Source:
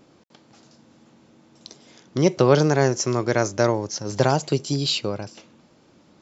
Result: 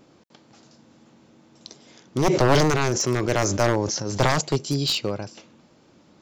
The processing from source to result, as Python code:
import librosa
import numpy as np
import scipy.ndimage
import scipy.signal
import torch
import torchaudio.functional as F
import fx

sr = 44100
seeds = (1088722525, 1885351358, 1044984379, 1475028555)

y = np.minimum(x, 2.0 * 10.0 ** (-16.5 / 20.0) - x)
y = fx.sustainer(y, sr, db_per_s=27.0, at=(2.17, 4.41))